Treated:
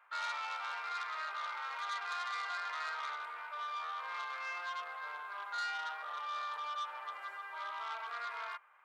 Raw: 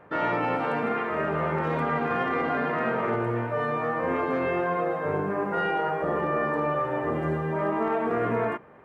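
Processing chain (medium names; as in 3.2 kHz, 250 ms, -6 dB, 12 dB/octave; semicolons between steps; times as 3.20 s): high-pass 1.1 kHz 24 dB/octave; band-stop 1.8 kHz, Q 9.8; transformer saturation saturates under 3.2 kHz; trim -5 dB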